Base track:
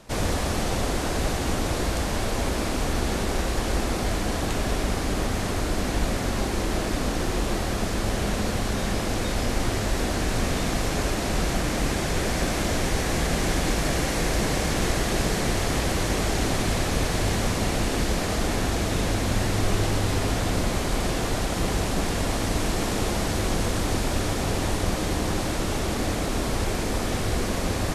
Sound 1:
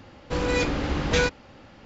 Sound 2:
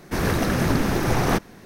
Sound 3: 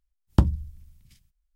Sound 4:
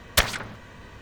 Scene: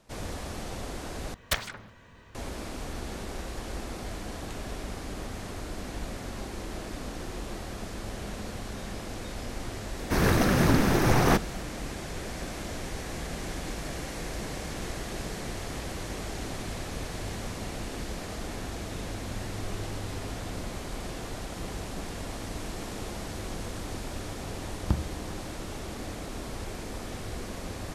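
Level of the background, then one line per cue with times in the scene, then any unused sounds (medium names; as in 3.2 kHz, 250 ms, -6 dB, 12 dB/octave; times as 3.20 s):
base track -11.5 dB
1.34 s: replace with 4 -8.5 dB
9.99 s: add 2 -1 dB
24.52 s: add 3 -8.5 dB
not used: 1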